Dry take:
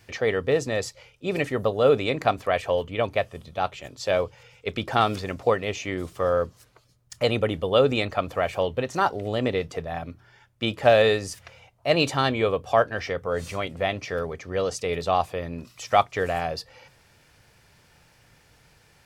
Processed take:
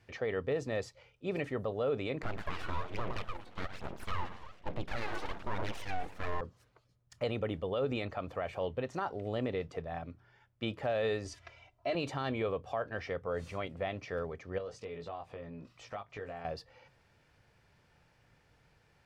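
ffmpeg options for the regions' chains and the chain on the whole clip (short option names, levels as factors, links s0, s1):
-filter_complex "[0:a]asettb=1/sr,asplit=3[s0][s1][s2];[s0]atrim=end=2.234[s3];[s1]atrim=start=2.23:end=6.41,asetpts=PTS-STARTPTS,afade=t=in:d=0.004:c=qsin,afade=t=out:st=4.176:d=0.004:c=qsin,asplit=2[s4][s5];[s5]adelay=113,lowpass=f=4300:p=1,volume=0.251,asplit=2[s6][s7];[s7]adelay=113,lowpass=f=4300:p=1,volume=0.46,asplit=2[s8][s9];[s9]adelay=113,lowpass=f=4300:p=1,volume=0.46,asplit=2[s10][s11];[s11]adelay=113,lowpass=f=4300:p=1,volume=0.46,asplit=2[s12][s13];[s13]adelay=113,lowpass=f=4300:p=1,volume=0.46[s14];[s4][s6][s8][s10][s12][s14]amix=inputs=6:normalize=0,atrim=end_sample=184338,aphaser=in_gain=1:out_gain=1:delay=2.7:decay=0.76:speed=1.2:type=sinusoidal,aeval=exprs='abs(val(0))':c=same[s15];[s2]atrim=start=6.406[s16];[s3][s15]acrossfade=d=0.004:c1=hsin:c2=qsin[s17];[s17][s16]acrossfade=d=0.004:c1=qsin:c2=hsin,asettb=1/sr,asplit=3[s18][s19][s20];[s18]atrim=end=11.254[s21];[s19]atrim=start=11.25:end=11.95,asetpts=PTS-STARTPTS,afade=t=in:d=0.004:c=qsin,afade=t=out:st=0.696:d=0.004:c=qsin,lowpass=5600,aemphasis=mode=production:type=cd,aecho=1:1:3:0.95,atrim=end_sample=30870[s22];[s20]atrim=start=11.946[s23];[s21][s22]acrossfade=d=0.004:c1=hsin:c2=qsin[s24];[s24][s23]acrossfade=d=0.004:c1=qsin:c2=hsin,asettb=1/sr,asplit=3[s25][s26][s27];[s25]atrim=end=14.584[s28];[s26]atrim=start=14.58:end=16.45,asetpts=PTS-STARTPTS,afade=t=in:d=0.004:c=qsin,afade=t=out:st=1.866:d=0.004:c=qsin,highshelf=f=8100:g=-11.5,acompressor=threshold=0.0178:ratio=3:attack=3.2:release=140:knee=1:detection=peak,asplit=2[s29][s30];[s30]adelay=19,volume=0.596[s31];[s29][s31]amix=inputs=2:normalize=0,atrim=end_sample=82467[s32];[s27]atrim=start=16.446[s33];[s28][s32]acrossfade=d=0.004:c1=hsin:c2=qsin[s34];[s34][s33]acrossfade=d=0.004:c1=qsin:c2=hsin,lowpass=f=2400:p=1,alimiter=limit=0.15:level=0:latency=1:release=49,volume=0.398"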